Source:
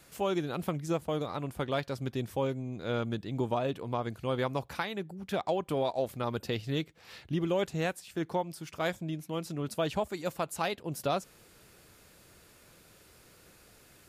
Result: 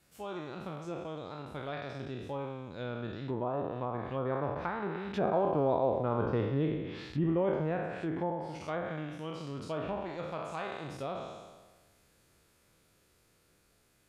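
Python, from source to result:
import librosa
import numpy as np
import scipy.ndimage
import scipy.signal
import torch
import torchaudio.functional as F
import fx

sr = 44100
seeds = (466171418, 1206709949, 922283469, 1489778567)

y = fx.spec_trails(x, sr, decay_s=1.35)
y = fx.doppler_pass(y, sr, speed_mps=11, closest_m=16.0, pass_at_s=6.19)
y = fx.low_shelf(y, sr, hz=230.0, db=2.5)
y = fx.env_lowpass_down(y, sr, base_hz=1200.0, full_db=-29.5)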